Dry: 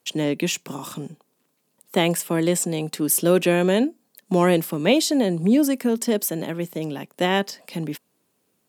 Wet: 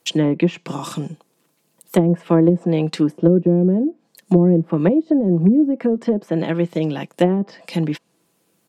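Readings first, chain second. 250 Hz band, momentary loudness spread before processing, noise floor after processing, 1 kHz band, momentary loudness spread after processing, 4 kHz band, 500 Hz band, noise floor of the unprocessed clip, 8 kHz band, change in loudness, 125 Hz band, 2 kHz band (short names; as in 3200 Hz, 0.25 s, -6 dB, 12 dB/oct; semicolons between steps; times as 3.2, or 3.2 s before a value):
+5.5 dB, 13 LU, -66 dBFS, -2.0 dB, 11 LU, n/a, +2.5 dB, -71 dBFS, under -10 dB, +3.5 dB, +8.5 dB, -6.0 dB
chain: treble ducked by the level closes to 300 Hz, closed at -15 dBFS; comb 6 ms, depth 43%; gain +5.5 dB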